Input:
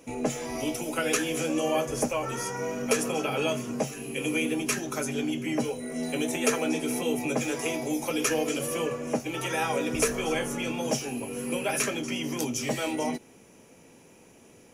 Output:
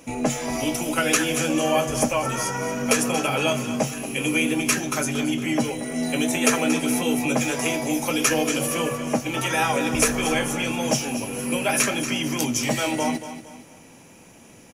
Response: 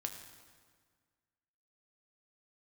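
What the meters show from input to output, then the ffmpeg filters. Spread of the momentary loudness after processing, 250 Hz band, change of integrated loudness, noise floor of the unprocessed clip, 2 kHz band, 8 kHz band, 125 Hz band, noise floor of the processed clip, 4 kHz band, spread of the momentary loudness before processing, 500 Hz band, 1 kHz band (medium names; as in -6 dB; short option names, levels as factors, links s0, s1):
6 LU, +6.0 dB, +6.0 dB, -55 dBFS, +7.0 dB, +7.5 dB, +7.0 dB, -48 dBFS, +7.5 dB, 5 LU, +3.5 dB, +7.0 dB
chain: -filter_complex "[0:a]equalizer=f=420:t=o:w=0.61:g=-7,asplit=2[s0][s1];[s1]aecho=0:1:231|462|693|924:0.251|0.0929|0.0344|0.0127[s2];[s0][s2]amix=inputs=2:normalize=0,volume=2.24"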